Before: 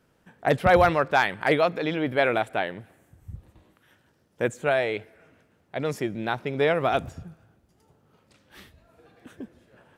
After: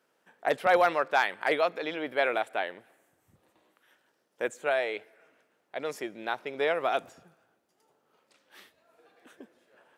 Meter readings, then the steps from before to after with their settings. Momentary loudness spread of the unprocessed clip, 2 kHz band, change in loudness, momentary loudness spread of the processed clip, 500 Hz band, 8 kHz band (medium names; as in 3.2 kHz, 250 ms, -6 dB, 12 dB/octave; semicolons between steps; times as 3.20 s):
16 LU, -3.5 dB, -4.5 dB, 13 LU, -5.0 dB, -3.5 dB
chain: high-pass 410 Hz 12 dB/octave; trim -3.5 dB